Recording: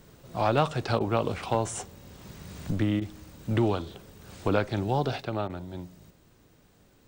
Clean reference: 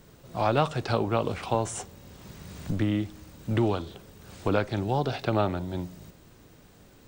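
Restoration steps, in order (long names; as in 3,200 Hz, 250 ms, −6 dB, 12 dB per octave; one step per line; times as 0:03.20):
clipped peaks rebuilt −13 dBFS
repair the gap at 0:00.99/0:03.00/0:05.48, 14 ms
level correction +6 dB, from 0:05.21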